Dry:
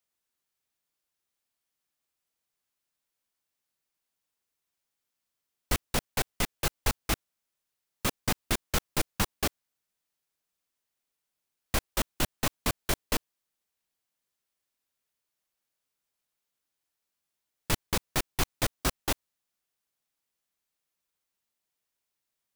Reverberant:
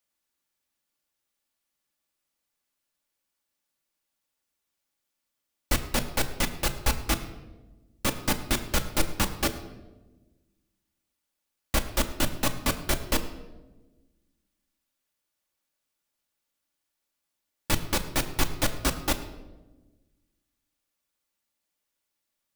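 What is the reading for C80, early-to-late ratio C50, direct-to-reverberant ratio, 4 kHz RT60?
13.0 dB, 12.0 dB, 5.0 dB, 0.75 s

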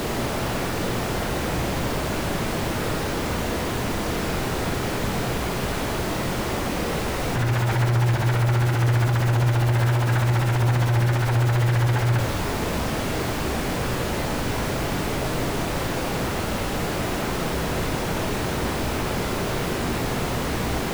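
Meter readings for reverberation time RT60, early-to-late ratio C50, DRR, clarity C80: 0.85 s, 8.0 dB, 4.0 dB, 11.0 dB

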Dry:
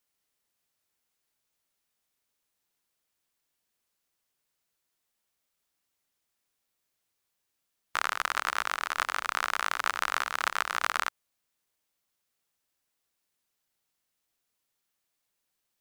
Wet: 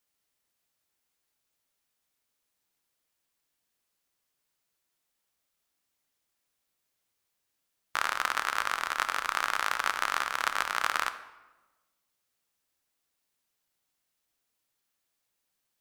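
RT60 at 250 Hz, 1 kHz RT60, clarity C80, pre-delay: 1.3 s, 1.1 s, 14.0 dB, 3 ms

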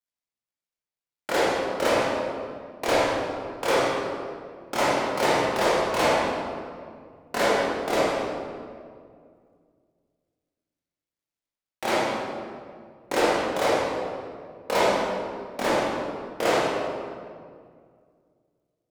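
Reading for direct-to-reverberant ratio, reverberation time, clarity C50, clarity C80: -9.0 dB, 2.1 s, -4.0 dB, -0.5 dB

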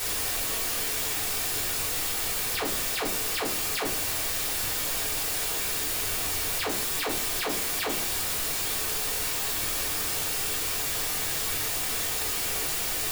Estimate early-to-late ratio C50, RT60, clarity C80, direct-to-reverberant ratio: 9.5 dB, 0.40 s, 15.0 dB, -5.5 dB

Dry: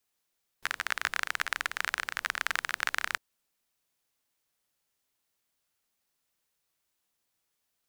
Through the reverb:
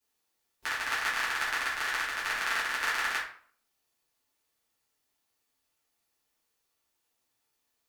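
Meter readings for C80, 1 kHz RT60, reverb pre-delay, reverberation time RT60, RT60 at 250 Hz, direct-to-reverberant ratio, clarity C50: 9.5 dB, 0.50 s, 6 ms, 0.50 s, 0.50 s, -9.5 dB, 5.0 dB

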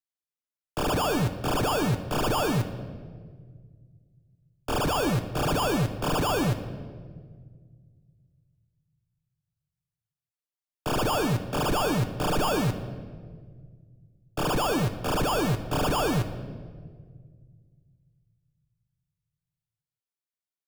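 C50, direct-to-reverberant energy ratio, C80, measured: 11.0 dB, 6.0 dB, 12.5 dB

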